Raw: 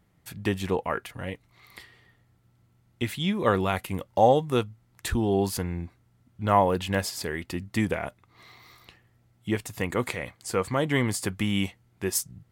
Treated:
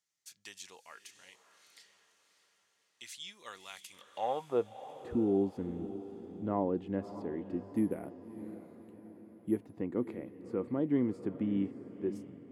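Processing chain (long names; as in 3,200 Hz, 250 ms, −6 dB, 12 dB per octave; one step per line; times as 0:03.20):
0:07.70–0:09.77: bad sample-rate conversion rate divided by 4×, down filtered, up zero stuff
band-pass filter sweep 6,200 Hz → 290 Hz, 0:03.93–0:04.75
feedback delay with all-pass diffusion 605 ms, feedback 50%, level −12.5 dB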